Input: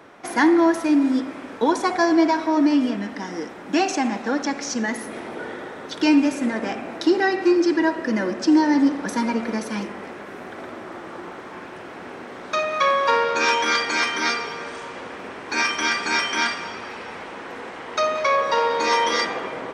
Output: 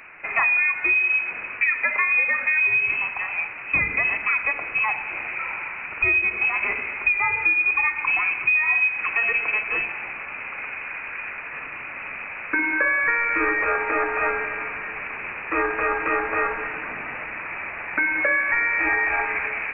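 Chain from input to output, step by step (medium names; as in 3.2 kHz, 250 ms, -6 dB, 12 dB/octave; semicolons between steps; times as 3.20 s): compression 5:1, threshold -21 dBFS, peak gain reduction 8.5 dB; frequency inversion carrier 2.8 kHz; trim +3 dB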